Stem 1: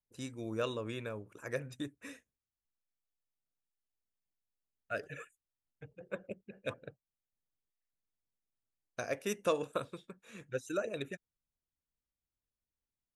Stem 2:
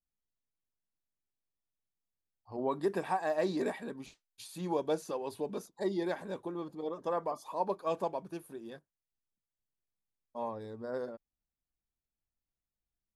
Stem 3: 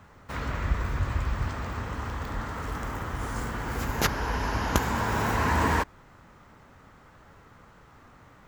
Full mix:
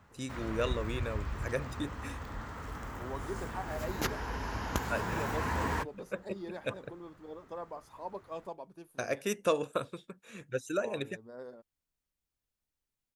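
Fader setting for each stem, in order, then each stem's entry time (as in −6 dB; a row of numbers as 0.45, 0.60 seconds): +3.0, −8.5, −8.5 decibels; 0.00, 0.45, 0.00 seconds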